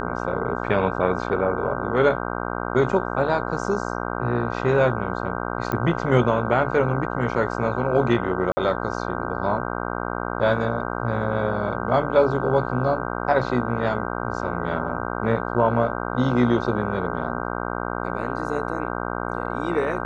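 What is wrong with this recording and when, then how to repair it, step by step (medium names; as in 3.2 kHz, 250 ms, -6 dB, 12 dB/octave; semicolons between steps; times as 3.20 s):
buzz 60 Hz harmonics 26 -28 dBFS
5.72 s: pop -12 dBFS
8.52–8.57 s: dropout 50 ms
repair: de-click; de-hum 60 Hz, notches 26; interpolate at 8.52 s, 50 ms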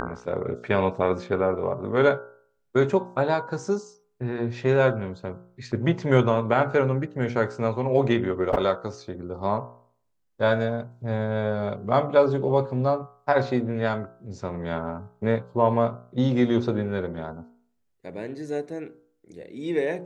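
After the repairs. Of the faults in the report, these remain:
nothing left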